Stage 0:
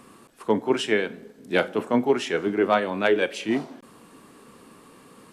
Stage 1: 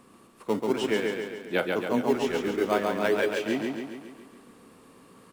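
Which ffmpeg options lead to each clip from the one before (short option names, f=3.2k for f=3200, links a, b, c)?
-filter_complex "[0:a]asplit=2[a][b];[b]acrusher=samples=15:mix=1:aa=0.000001:lfo=1:lforange=24:lforate=0.5,volume=-11dB[c];[a][c]amix=inputs=2:normalize=0,aecho=1:1:138|276|414|552|690|828|966|1104:0.668|0.374|0.21|0.117|0.0657|0.0368|0.0206|0.0115,volume=-7dB"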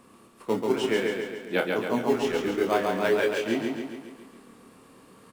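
-filter_complex "[0:a]asplit=2[a][b];[b]adelay=26,volume=-6dB[c];[a][c]amix=inputs=2:normalize=0"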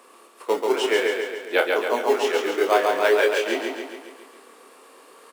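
-af "highpass=f=390:w=0.5412,highpass=f=390:w=1.3066,volume=6.5dB"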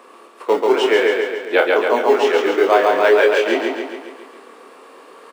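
-filter_complex "[0:a]equalizer=f=15k:t=o:w=1.7:g=-14,asplit=2[a][b];[b]alimiter=limit=-15.5dB:level=0:latency=1:release=12,volume=-1.5dB[c];[a][c]amix=inputs=2:normalize=0,volume=2.5dB"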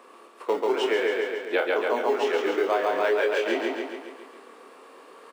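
-af "acompressor=threshold=-15dB:ratio=3,volume=-6dB"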